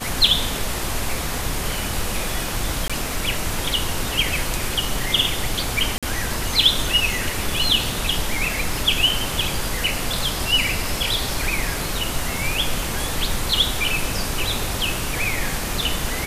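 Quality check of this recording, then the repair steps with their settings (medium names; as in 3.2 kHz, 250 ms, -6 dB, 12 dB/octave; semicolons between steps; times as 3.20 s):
2.88–2.90 s: dropout 16 ms
5.98–6.03 s: dropout 46 ms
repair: interpolate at 2.88 s, 16 ms; interpolate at 5.98 s, 46 ms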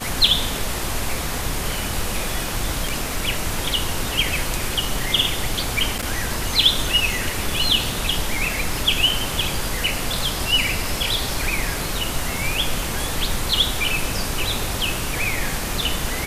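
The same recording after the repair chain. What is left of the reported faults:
nothing left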